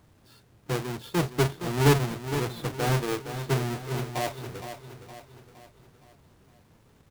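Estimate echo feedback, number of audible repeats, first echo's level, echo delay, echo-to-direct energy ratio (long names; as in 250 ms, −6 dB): 48%, 4, −10.0 dB, 465 ms, −9.0 dB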